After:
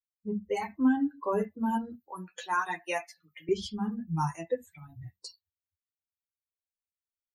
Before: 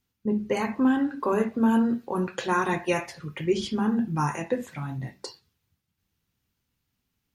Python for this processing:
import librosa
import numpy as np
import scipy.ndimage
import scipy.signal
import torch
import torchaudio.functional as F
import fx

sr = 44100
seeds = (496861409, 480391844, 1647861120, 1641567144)

y = fx.bin_expand(x, sr, power=2.0)
y = fx.chorus_voices(y, sr, voices=6, hz=0.53, base_ms=11, depth_ms=1.2, mix_pct=40)
y = fx.highpass(y, sr, hz=430.0, slope=12, at=(2.1, 3.49))
y = y * librosa.db_to_amplitude(1.5)